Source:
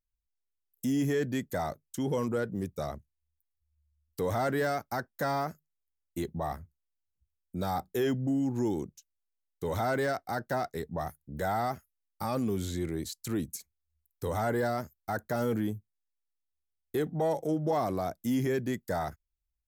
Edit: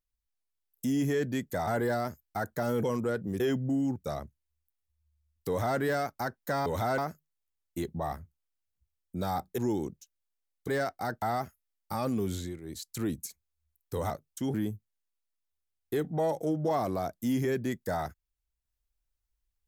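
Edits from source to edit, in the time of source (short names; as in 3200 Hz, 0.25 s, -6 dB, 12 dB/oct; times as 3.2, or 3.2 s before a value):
1.67–2.11 swap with 14.4–15.56
7.98–8.54 move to 2.68
9.64–9.96 move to 5.38
10.5–11.52 cut
12.65–13.16 dip -12.5 dB, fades 0.25 s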